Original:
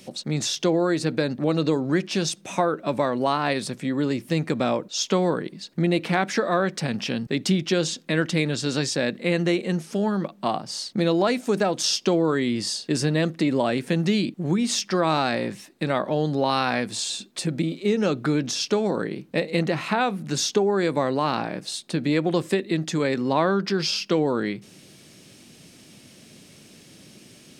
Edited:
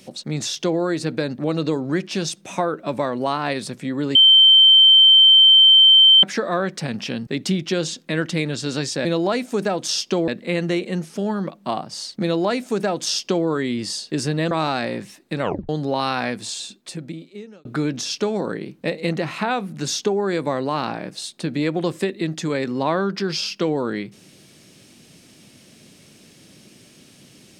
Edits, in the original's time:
4.15–6.23 s: bleep 3.11 kHz -7.5 dBFS
11.00–12.23 s: copy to 9.05 s
13.28–15.01 s: delete
15.92 s: tape stop 0.27 s
16.81–18.15 s: fade out

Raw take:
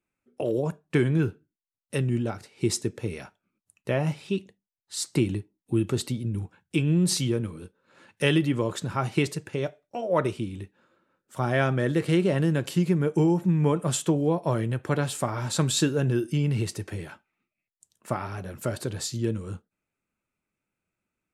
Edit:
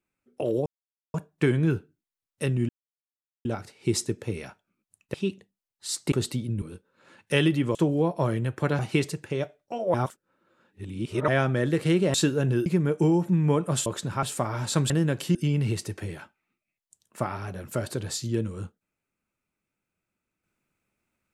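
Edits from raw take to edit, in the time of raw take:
0.66 s: insert silence 0.48 s
2.21 s: insert silence 0.76 s
3.90–4.22 s: delete
5.20–5.88 s: delete
6.38–7.52 s: delete
8.65–9.02 s: swap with 14.02–15.06 s
10.17–11.51 s: reverse
12.37–12.82 s: swap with 15.73–16.25 s

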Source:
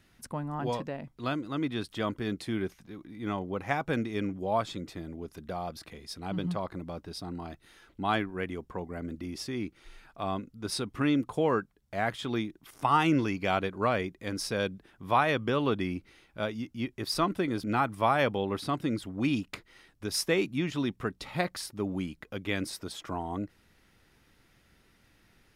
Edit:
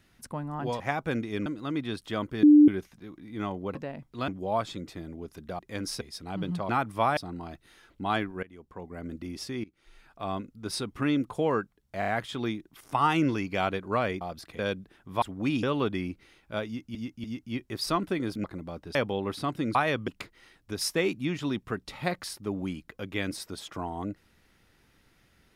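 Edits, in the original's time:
0.80–1.33 s: swap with 3.62–4.28 s
2.30–2.55 s: bleep 297 Hz -11.5 dBFS
5.59–5.97 s: swap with 14.11–14.53 s
6.65–7.16 s: swap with 17.72–18.20 s
8.42–9.12 s: fade in, from -21 dB
9.63–10.45 s: fade in equal-power, from -21.5 dB
11.98 s: stutter 0.03 s, 4 plays
15.16–15.49 s: swap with 19.00–19.41 s
16.52–16.81 s: loop, 3 plays

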